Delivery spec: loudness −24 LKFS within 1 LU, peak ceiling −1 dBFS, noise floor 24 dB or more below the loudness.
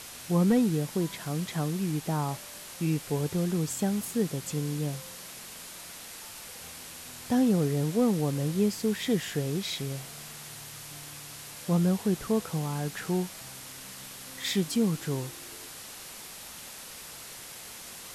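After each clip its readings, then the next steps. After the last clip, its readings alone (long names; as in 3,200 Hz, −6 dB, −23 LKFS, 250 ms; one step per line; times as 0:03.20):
background noise floor −44 dBFS; target noise floor −53 dBFS; integrated loudness −29.0 LKFS; sample peak −15.5 dBFS; target loudness −24.0 LKFS
→ broadband denoise 9 dB, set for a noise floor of −44 dBFS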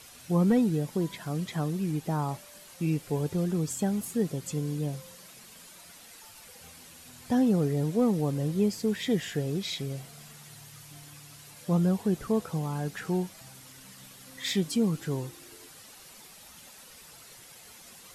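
background noise floor −51 dBFS; target noise floor −53 dBFS
→ broadband denoise 6 dB, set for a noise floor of −51 dBFS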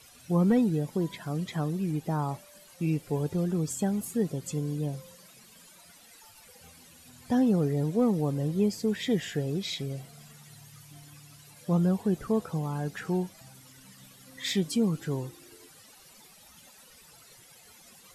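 background noise floor −55 dBFS; integrated loudness −29.0 LKFS; sample peak −15.5 dBFS; target loudness −24.0 LKFS
→ level +5 dB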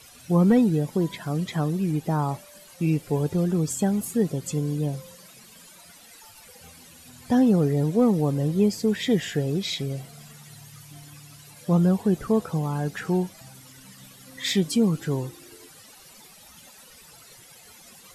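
integrated loudness −24.0 LKFS; sample peak −10.5 dBFS; background noise floor −50 dBFS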